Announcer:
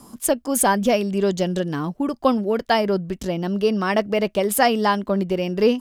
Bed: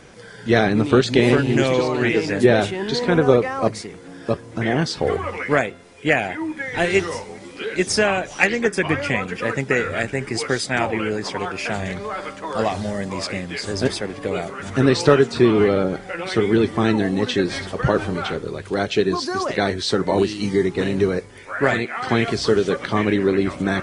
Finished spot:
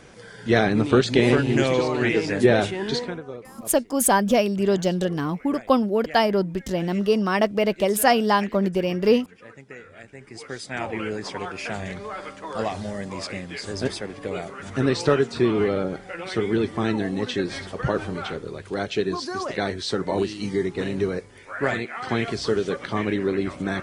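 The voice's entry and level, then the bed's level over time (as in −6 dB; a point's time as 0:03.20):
3.45 s, −0.5 dB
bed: 0:02.96 −2.5 dB
0:03.23 −22 dB
0:09.95 −22 dB
0:11.00 −5.5 dB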